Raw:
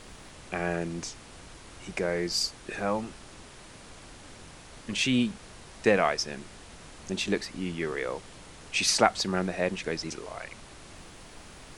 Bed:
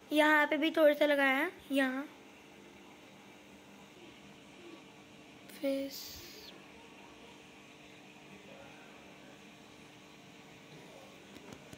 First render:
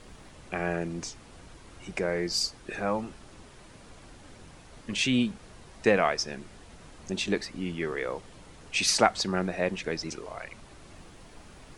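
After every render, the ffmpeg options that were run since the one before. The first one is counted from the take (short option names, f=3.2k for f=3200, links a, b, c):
-af "afftdn=nr=6:nf=-49"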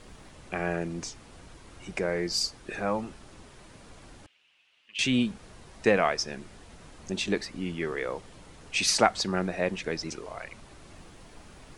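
-filter_complex "[0:a]asettb=1/sr,asplit=3[a][b][c];[a]atrim=end=4.264[d];[b]atrim=start=4.26:end=4.99,asetpts=PTS-STARTPTS,afade=t=in:d=0.004:c=qsin,afade=t=out:st=0.726:d=0.004:c=qsin,bandpass=f=2.8k:t=q:w=5.3[e];[c]atrim=start=4.986[f];[d][e]acrossfade=d=0.004:c1=hsin:c2=qsin[g];[g][f]acrossfade=d=0.004:c1=qsin:c2=hsin"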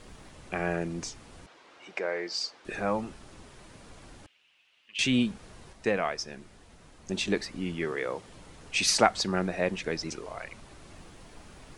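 -filter_complex "[0:a]asettb=1/sr,asplit=3[a][b][c];[a]atrim=end=1.464[d];[b]atrim=start=1.46:end=2.65,asetpts=PTS-STARTPTS,afade=t=in:d=0.004:c=qsin,afade=t=out:st=1.186:d=0.004:c=qsin,highpass=460,lowpass=4.4k[e];[c]atrim=start=2.646[f];[d][e]acrossfade=d=0.004:c1=hsin:c2=qsin[g];[g][f]acrossfade=d=0.004:c1=qsin:c2=hsin,asettb=1/sr,asplit=3[h][i][j];[h]atrim=end=7.854[k];[i]atrim=start=7.85:end=8.29,asetpts=PTS-STARTPTS,afade=t=in:d=0.004:c=qsin,afade=t=out:st=0.436:d=0.004:c=qsin,highpass=93[l];[j]atrim=start=8.286[m];[k][l]acrossfade=d=0.004:c1=hsin:c2=qsin[n];[n][m]acrossfade=d=0.004:c1=qsin:c2=hsin,asplit=3[o][p][q];[o]atrim=end=5.732[r];[p]atrim=start=5.728:end=7.092,asetpts=PTS-STARTPTS,volume=-5dB[s];[q]atrim=start=7.088[t];[r][s]acrossfade=d=0.004:c1=hsin:c2=hsin[u];[u][t]acrossfade=d=0.004:c1=hsin:c2=hsin"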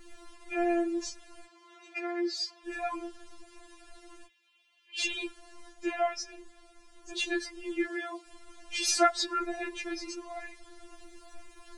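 -af "afftfilt=real='re*4*eq(mod(b,16),0)':imag='im*4*eq(mod(b,16),0)':win_size=2048:overlap=0.75"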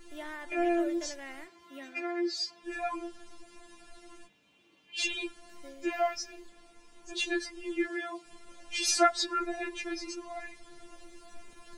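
-filter_complex "[1:a]volume=-16dB[a];[0:a][a]amix=inputs=2:normalize=0"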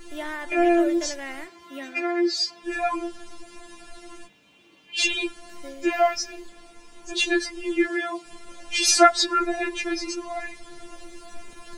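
-af "volume=9dB"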